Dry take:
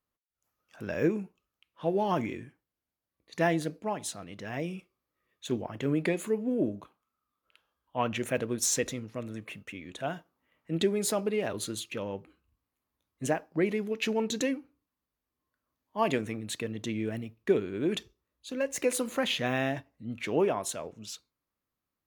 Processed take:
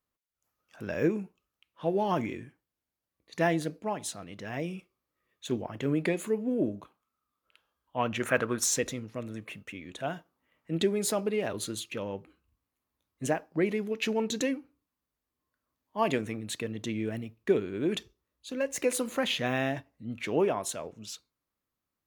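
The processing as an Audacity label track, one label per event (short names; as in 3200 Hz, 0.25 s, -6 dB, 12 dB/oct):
8.200000	8.640000	bell 1300 Hz +14 dB 1.1 oct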